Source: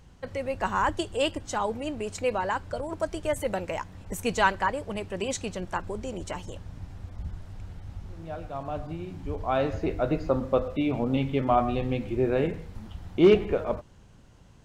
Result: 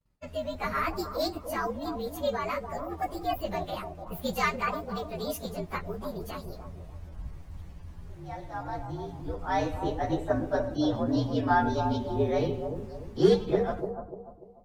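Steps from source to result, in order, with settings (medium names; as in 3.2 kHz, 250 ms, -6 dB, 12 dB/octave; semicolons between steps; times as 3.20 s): frequency axis rescaled in octaves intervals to 117%; expander -43 dBFS; bucket-brigade echo 294 ms, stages 2048, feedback 37%, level -7 dB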